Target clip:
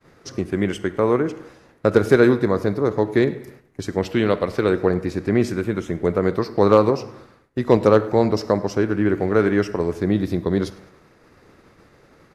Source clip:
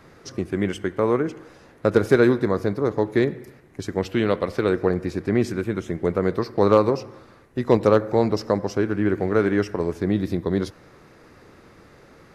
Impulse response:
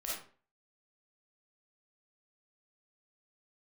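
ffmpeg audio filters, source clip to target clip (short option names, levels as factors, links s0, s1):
-filter_complex "[0:a]agate=range=0.0224:threshold=0.00631:ratio=3:detection=peak,aecho=1:1:104|208|312:0.0708|0.0304|0.0131,asplit=2[s0][s1];[1:a]atrim=start_sample=2205[s2];[s1][s2]afir=irnorm=-1:irlink=0,volume=0.141[s3];[s0][s3]amix=inputs=2:normalize=0,volume=1.19"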